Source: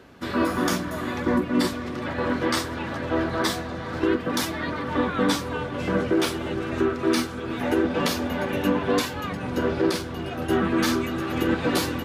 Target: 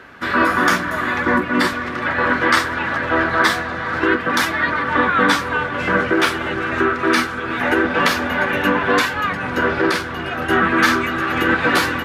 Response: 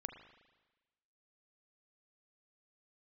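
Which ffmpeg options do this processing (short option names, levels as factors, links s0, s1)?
-af "equalizer=f=1600:w=0.78:g=14,volume=1.19"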